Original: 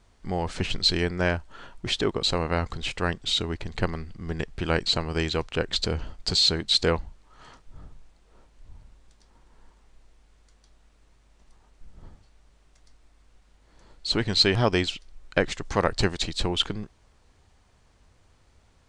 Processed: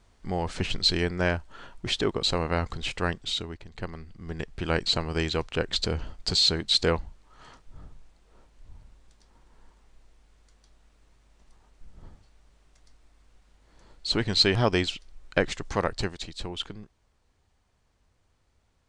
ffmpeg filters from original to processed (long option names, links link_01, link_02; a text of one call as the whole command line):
ffmpeg -i in.wav -af "volume=10dB,afade=type=out:start_time=3.05:duration=0.6:silence=0.281838,afade=type=in:start_time=3.65:duration=1.21:silence=0.281838,afade=type=out:start_time=15.59:duration=0.59:silence=0.398107" out.wav